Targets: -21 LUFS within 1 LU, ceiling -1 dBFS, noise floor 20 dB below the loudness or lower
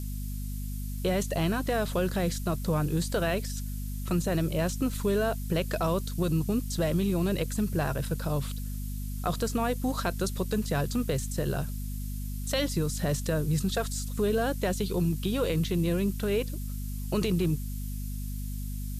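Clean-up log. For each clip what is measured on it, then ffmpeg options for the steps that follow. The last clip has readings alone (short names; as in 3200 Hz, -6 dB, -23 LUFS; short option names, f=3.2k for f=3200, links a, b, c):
hum 50 Hz; harmonics up to 250 Hz; hum level -32 dBFS; noise floor -34 dBFS; noise floor target -50 dBFS; loudness -30.0 LUFS; peak -15.0 dBFS; loudness target -21.0 LUFS
-> -af "bandreject=f=50:t=h:w=4,bandreject=f=100:t=h:w=4,bandreject=f=150:t=h:w=4,bandreject=f=200:t=h:w=4,bandreject=f=250:t=h:w=4"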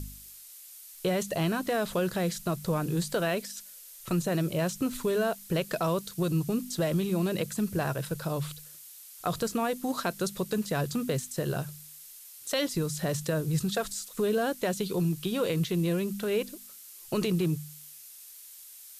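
hum none; noise floor -49 dBFS; noise floor target -50 dBFS
-> -af "afftdn=nr=6:nf=-49"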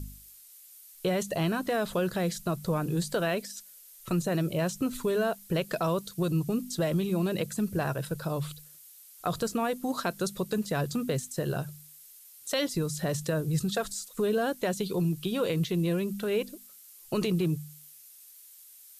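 noise floor -53 dBFS; loudness -30.5 LUFS; peak -16.5 dBFS; loudness target -21.0 LUFS
-> -af "volume=9.5dB"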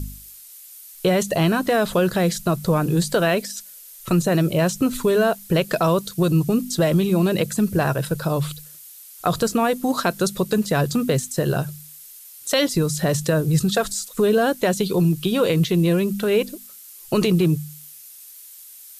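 loudness -21.0 LUFS; peak -7.0 dBFS; noise floor -43 dBFS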